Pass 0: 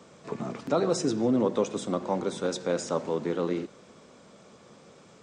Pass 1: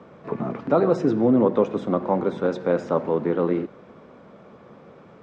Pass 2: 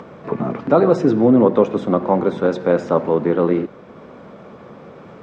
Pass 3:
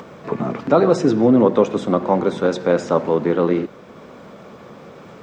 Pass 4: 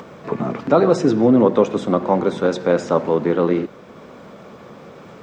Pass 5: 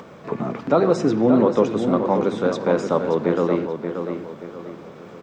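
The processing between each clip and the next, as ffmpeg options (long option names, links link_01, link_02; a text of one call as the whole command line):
ffmpeg -i in.wav -af "lowpass=1800,volume=6.5dB" out.wav
ffmpeg -i in.wav -af "acompressor=mode=upward:threshold=-39dB:ratio=2.5,volume=5.5dB" out.wav
ffmpeg -i in.wav -af "crystalizer=i=3:c=0,volume=-1dB" out.wav
ffmpeg -i in.wav -af anull out.wav
ffmpeg -i in.wav -filter_complex "[0:a]asplit=2[link_01][link_02];[link_02]adelay=580,lowpass=frequency=4700:poles=1,volume=-7dB,asplit=2[link_03][link_04];[link_04]adelay=580,lowpass=frequency=4700:poles=1,volume=0.38,asplit=2[link_05][link_06];[link_06]adelay=580,lowpass=frequency=4700:poles=1,volume=0.38,asplit=2[link_07][link_08];[link_08]adelay=580,lowpass=frequency=4700:poles=1,volume=0.38[link_09];[link_01][link_03][link_05][link_07][link_09]amix=inputs=5:normalize=0,volume=-3dB" out.wav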